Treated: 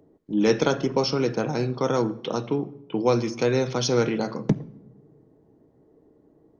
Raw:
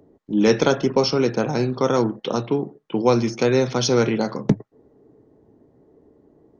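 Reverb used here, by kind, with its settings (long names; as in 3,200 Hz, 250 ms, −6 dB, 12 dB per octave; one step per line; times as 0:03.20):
rectangular room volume 3,800 cubic metres, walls furnished, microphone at 0.58 metres
level −4 dB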